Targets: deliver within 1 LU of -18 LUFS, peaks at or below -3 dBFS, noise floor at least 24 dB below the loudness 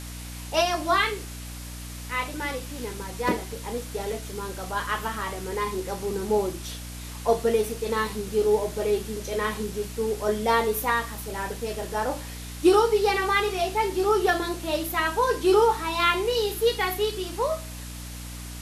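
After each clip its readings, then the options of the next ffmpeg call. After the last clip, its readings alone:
hum 60 Hz; harmonics up to 300 Hz; hum level -36 dBFS; noise floor -38 dBFS; noise floor target -50 dBFS; loudness -26.0 LUFS; peak -8.0 dBFS; loudness target -18.0 LUFS
-> -af "bandreject=f=60:t=h:w=4,bandreject=f=120:t=h:w=4,bandreject=f=180:t=h:w=4,bandreject=f=240:t=h:w=4,bandreject=f=300:t=h:w=4"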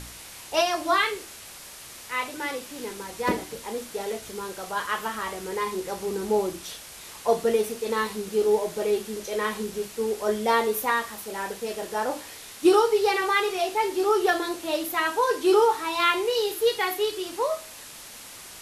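hum none; noise floor -43 dBFS; noise floor target -50 dBFS
-> -af "afftdn=nr=7:nf=-43"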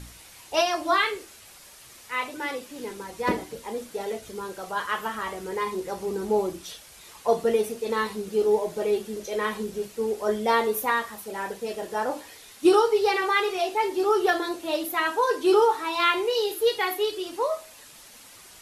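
noise floor -49 dBFS; noise floor target -50 dBFS
-> -af "afftdn=nr=6:nf=-49"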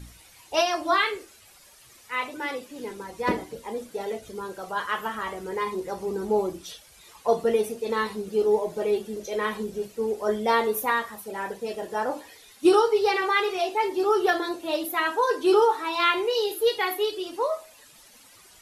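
noise floor -53 dBFS; loudness -26.0 LUFS; peak -8.0 dBFS; loudness target -18.0 LUFS
-> -af "volume=8dB,alimiter=limit=-3dB:level=0:latency=1"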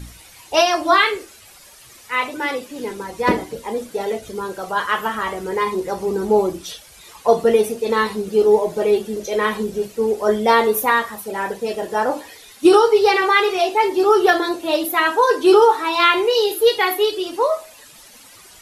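loudness -18.0 LUFS; peak -3.0 dBFS; noise floor -45 dBFS

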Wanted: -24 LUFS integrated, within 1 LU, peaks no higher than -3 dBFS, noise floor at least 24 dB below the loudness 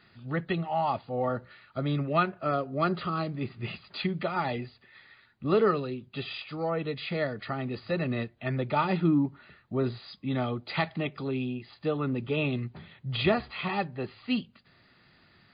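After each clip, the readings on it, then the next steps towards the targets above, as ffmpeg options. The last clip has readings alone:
loudness -30.5 LUFS; peak -11.0 dBFS; loudness target -24.0 LUFS
-> -af "volume=6.5dB"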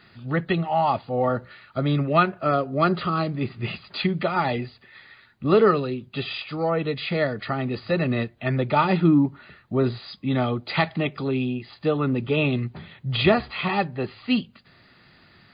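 loudness -24.0 LUFS; peak -4.5 dBFS; noise floor -55 dBFS

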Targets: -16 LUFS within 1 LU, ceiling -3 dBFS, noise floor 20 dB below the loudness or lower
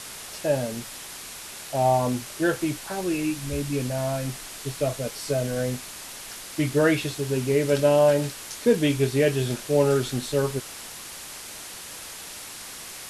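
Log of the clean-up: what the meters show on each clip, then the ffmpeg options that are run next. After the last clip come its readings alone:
noise floor -40 dBFS; noise floor target -45 dBFS; loudness -25.0 LUFS; peak -8.5 dBFS; loudness target -16.0 LUFS
-> -af "afftdn=nr=6:nf=-40"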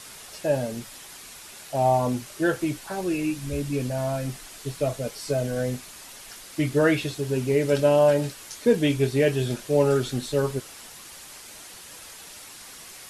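noise floor -44 dBFS; noise floor target -45 dBFS
-> -af "afftdn=nr=6:nf=-44"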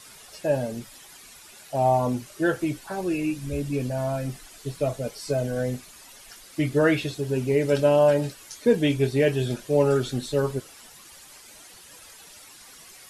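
noise floor -48 dBFS; loudness -25.0 LUFS; peak -9.0 dBFS; loudness target -16.0 LUFS
-> -af "volume=9dB,alimiter=limit=-3dB:level=0:latency=1"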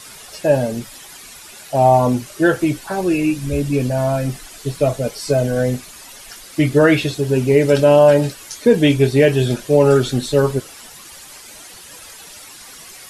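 loudness -16.5 LUFS; peak -3.0 dBFS; noise floor -39 dBFS

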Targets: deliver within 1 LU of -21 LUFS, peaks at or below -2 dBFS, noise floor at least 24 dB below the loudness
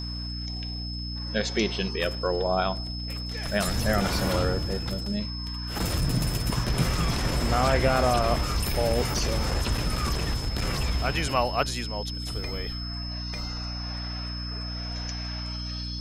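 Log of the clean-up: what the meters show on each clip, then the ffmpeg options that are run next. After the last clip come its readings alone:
hum 60 Hz; harmonics up to 300 Hz; hum level -32 dBFS; steady tone 5200 Hz; tone level -36 dBFS; loudness -28.0 LUFS; peak -9.5 dBFS; loudness target -21.0 LUFS
-> -af "bandreject=f=60:t=h:w=4,bandreject=f=120:t=h:w=4,bandreject=f=180:t=h:w=4,bandreject=f=240:t=h:w=4,bandreject=f=300:t=h:w=4"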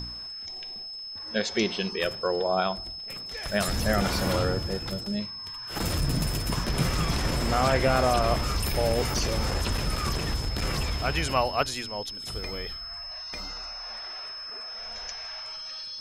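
hum none; steady tone 5200 Hz; tone level -36 dBFS
-> -af "bandreject=f=5.2k:w=30"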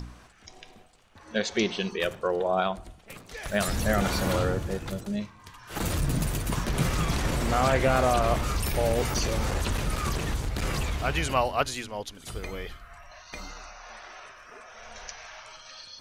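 steady tone none; loudness -28.0 LUFS; peak -10.0 dBFS; loudness target -21.0 LUFS
-> -af "volume=7dB"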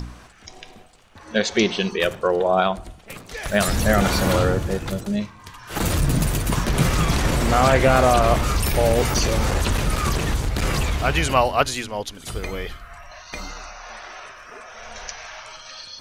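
loudness -21.0 LUFS; peak -3.0 dBFS; noise floor -45 dBFS

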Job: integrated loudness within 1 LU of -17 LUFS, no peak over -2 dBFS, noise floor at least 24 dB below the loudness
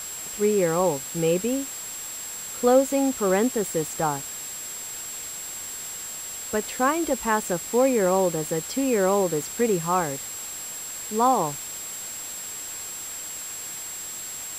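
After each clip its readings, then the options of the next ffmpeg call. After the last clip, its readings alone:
steady tone 7600 Hz; tone level -34 dBFS; noise floor -35 dBFS; noise floor target -50 dBFS; loudness -25.5 LUFS; peak -8.0 dBFS; loudness target -17.0 LUFS
-> -af "bandreject=f=7.6k:w=30"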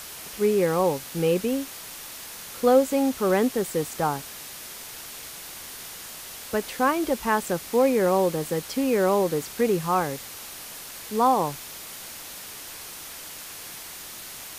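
steady tone none; noise floor -40 dBFS; noise floor target -48 dBFS
-> -af "afftdn=nr=8:nf=-40"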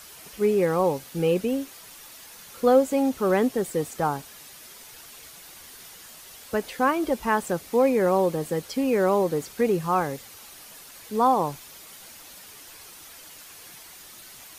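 noise floor -46 dBFS; noise floor target -48 dBFS
-> -af "afftdn=nr=6:nf=-46"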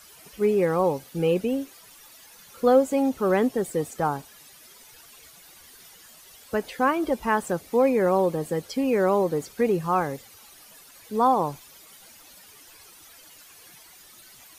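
noise floor -51 dBFS; loudness -24.5 LUFS; peak -8.5 dBFS; loudness target -17.0 LUFS
-> -af "volume=7.5dB,alimiter=limit=-2dB:level=0:latency=1"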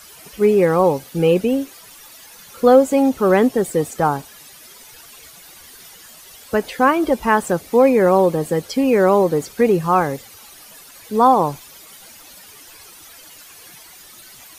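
loudness -17.0 LUFS; peak -2.0 dBFS; noise floor -43 dBFS

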